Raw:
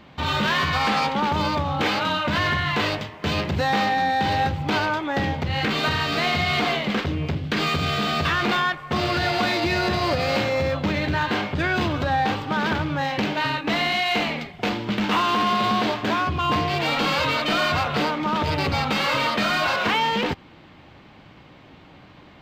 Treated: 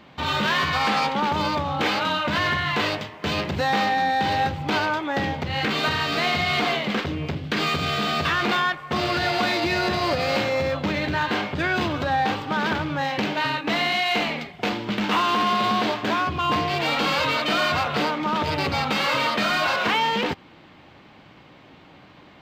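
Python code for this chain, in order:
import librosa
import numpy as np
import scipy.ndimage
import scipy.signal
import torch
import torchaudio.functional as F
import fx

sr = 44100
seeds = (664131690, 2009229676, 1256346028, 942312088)

y = fx.low_shelf(x, sr, hz=100.0, db=-9.0)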